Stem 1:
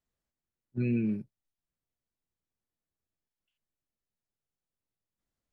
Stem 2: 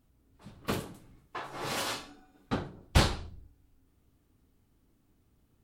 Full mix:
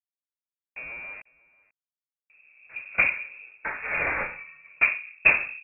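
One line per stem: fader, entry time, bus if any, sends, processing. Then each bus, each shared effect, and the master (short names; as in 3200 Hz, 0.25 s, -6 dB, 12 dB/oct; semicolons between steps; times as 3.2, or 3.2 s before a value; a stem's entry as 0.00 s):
-4.5 dB, 0.00 s, no send, echo send -24 dB, compressor 4:1, threshold -37 dBFS, peak gain reduction 10 dB; bit-crush 7-bit
+2.5 dB, 2.30 s, no send, no echo send, bell 190 Hz +8 dB 2.2 oct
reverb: off
echo: echo 0.492 s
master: inverted band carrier 2600 Hz; bell 580 Hz +8.5 dB 0.56 oct; vocal rider within 3 dB 0.5 s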